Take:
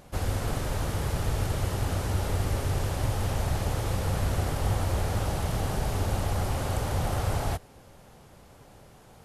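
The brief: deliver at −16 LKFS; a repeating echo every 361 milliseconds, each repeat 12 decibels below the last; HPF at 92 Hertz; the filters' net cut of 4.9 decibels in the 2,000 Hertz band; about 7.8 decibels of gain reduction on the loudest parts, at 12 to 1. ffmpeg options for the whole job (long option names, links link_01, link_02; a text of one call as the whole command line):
ffmpeg -i in.wav -af "highpass=92,equalizer=frequency=2000:width_type=o:gain=-6.5,acompressor=threshold=-34dB:ratio=12,aecho=1:1:361|722|1083:0.251|0.0628|0.0157,volume=22.5dB" out.wav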